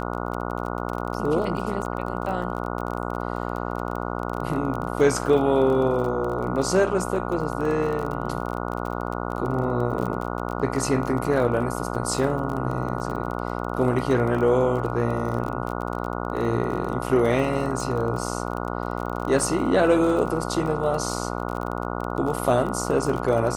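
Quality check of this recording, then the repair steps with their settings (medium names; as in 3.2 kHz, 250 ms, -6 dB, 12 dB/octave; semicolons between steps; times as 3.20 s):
buzz 60 Hz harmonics 24 -29 dBFS
crackle 28 per s -29 dBFS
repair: de-click; de-hum 60 Hz, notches 24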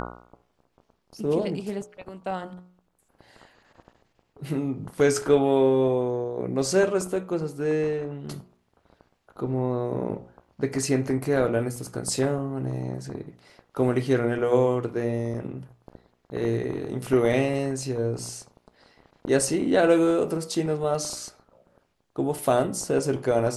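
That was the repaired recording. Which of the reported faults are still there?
nothing left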